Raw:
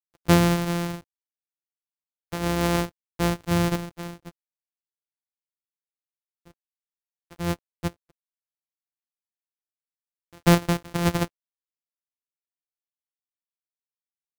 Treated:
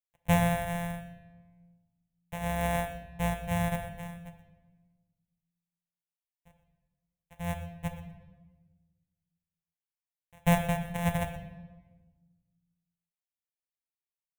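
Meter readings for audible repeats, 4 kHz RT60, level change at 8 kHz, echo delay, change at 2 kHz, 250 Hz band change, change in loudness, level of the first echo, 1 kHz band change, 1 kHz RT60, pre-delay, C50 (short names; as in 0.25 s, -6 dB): 1, 0.95 s, -8.0 dB, 0.122 s, -4.5 dB, -8.0 dB, -7.0 dB, -15.5 dB, -4.0 dB, 1.1 s, 4 ms, 8.0 dB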